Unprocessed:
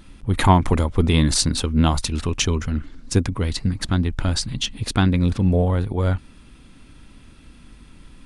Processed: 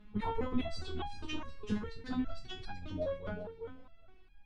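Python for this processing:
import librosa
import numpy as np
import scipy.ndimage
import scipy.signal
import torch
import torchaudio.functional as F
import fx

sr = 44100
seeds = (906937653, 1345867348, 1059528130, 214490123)

y = scipy.signal.sosfilt(scipy.signal.butter(2, 2700.0, 'lowpass', fs=sr, output='sos'), x)
y = fx.stretch_vocoder_free(y, sr, factor=0.54)
y = fx.echo_feedback(y, sr, ms=384, feedback_pct=19, wet_db=-9)
y = fx.resonator_held(y, sr, hz=4.9, low_hz=210.0, high_hz=810.0)
y = y * 10.0 ** (4.5 / 20.0)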